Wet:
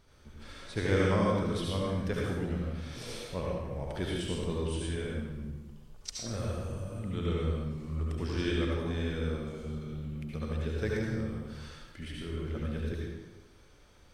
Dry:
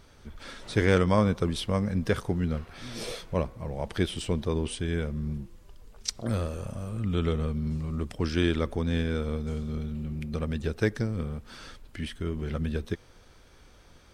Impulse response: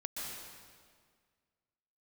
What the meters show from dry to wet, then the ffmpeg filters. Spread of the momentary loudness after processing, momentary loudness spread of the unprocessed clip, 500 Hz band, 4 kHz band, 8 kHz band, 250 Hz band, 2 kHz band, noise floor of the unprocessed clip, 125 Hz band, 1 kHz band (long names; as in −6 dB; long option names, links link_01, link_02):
13 LU, 12 LU, −3.5 dB, −4.0 dB, −4.0 dB, −4.5 dB, −4.0 dB, −55 dBFS, −4.0 dB, −3.5 dB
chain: -filter_complex "[1:a]atrim=start_sample=2205,asetrate=79380,aresample=44100[link_01];[0:a][link_01]afir=irnorm=-1:irlink=0"